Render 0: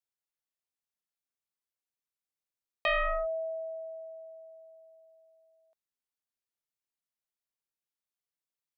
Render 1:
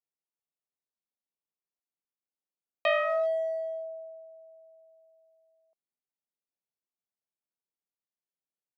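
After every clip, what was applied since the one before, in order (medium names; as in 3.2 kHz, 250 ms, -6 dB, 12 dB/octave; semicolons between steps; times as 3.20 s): local Wiener filter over 25 samples; high-pass 140 Hz 24 dB/octave; dynamic bell 640 Hz, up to +6 dB, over -47 dBFS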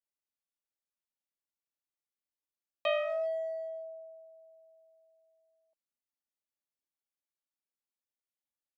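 comb 3.5 ms; trim -6.5 dB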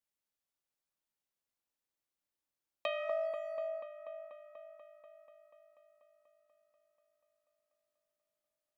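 compression, threshold -35 dBFS, peak gain reduction 9.5 dB; feedback echo behind a low-pass 243 ms, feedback 76%, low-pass 1.3 kHz, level -4.5 dB; on a send at -21 dB: reverberation RT60 0.55 s, pre-delay 5 ms; on the sum: trim +1.5 dB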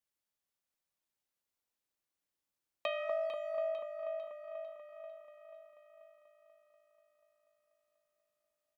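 feedback delay 449 ms, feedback 52%, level -10 dB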